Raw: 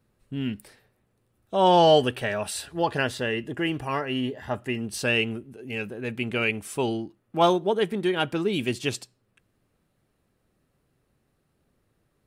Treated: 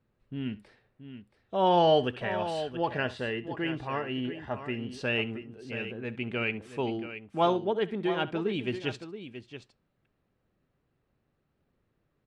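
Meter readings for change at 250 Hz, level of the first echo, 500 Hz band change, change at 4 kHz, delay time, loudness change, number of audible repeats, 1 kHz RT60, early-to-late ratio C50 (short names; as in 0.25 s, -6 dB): -4.5 dB, -18.0 dB, -4.5 dB, -6.5 dB, 68 ms, -5.0 dB, 2, none, none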